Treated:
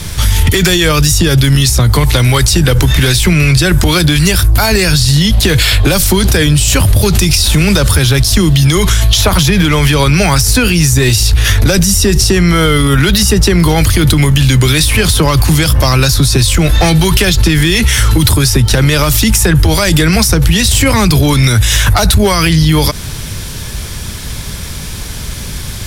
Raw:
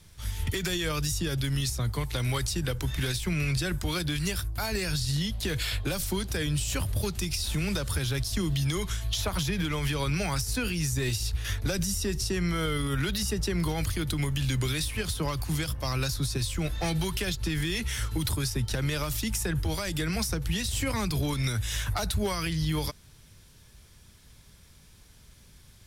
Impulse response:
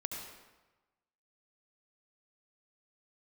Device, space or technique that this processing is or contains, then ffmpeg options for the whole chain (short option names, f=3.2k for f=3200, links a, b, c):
loud club master: -af "acompressor=threshold=-30dB:ratio=2.5,asoftclip=type=hard:threshold=-25dB,alimiter=level_in=33.5dB:limit=-1dB:release=50:level=0:latency=1,volume=-1dB"